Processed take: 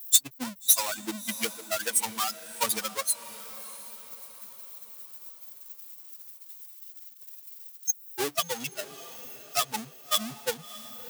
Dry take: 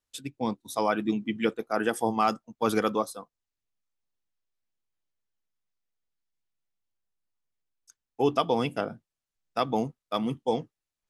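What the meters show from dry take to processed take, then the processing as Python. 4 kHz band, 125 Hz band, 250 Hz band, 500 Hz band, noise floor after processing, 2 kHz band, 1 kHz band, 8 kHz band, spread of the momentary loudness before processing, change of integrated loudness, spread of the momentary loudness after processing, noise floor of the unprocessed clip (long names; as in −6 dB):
+9.0 dB, −12.0 dB, −11.0 dB, −8.5 dB, −50 dBFS, +0.5 dB, −5.5 dB, +20.0 dB, 8 LU, +0.5 dB, 19 LU, below −85 dBFS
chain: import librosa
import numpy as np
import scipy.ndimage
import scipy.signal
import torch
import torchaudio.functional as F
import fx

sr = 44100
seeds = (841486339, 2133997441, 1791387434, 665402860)

p1 = fx.bin_expand(x, sr, power=3.0)
p2 = fx.power_curve(p1, sr, exponent=0.35)
p3 = scipy.signal.sosfilt(scipy.signal.butter(2, 90.0, 'highpass', fs=sr, output='sos'), p2)
p4 = fx.transient(p3, sr, attack_db=12, sustain_db=-8)
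p5 = F.preemphasis(torch.from_numpy(p4), 0.9).numpy()
p6 = p5 + fx.echo_diffused(p5, sr, ms=650, feedback_pct=47, wet_db=-15, dry=0)
y = p6 * librosa.db_to_amplitude(2.0)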